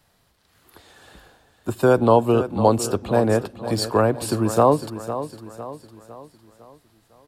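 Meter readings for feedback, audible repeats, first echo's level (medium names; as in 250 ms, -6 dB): 46%, 4, -12.0 dB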